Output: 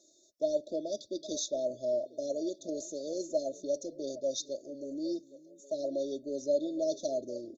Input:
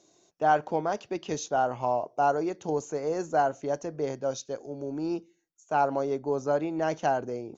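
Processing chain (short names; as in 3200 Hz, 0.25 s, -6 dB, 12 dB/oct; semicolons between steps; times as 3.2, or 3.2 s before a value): dynamic EQ 3400 Hz, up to +7 dB, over -54 dBFS, Q 1.8; brick-wall FIR band-stop 670–3400 Hz; low shelf 430 Hz -11 dB; comb 3.3 ms, depth 68%; delay with a stepping band-pass 0.406 s, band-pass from 180 Hz, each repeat 1.4 oct, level -12 dB; gain -1 dB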